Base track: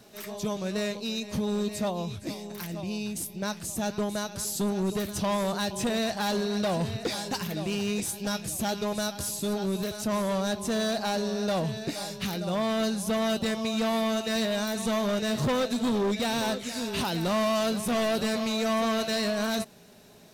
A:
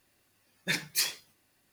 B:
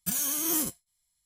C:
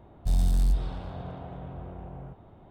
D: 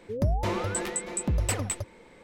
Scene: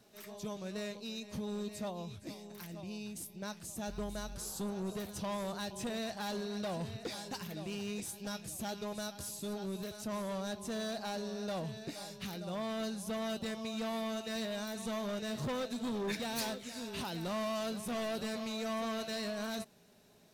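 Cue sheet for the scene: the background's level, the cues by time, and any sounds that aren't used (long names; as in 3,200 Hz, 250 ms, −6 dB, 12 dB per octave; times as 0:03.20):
base track −10.5 dB
0:03.62: mix in C −10 dB + noise reduction from a noise print of the clip's start 15 dB
0:15.40: mix in A −12 dB
not used: B, D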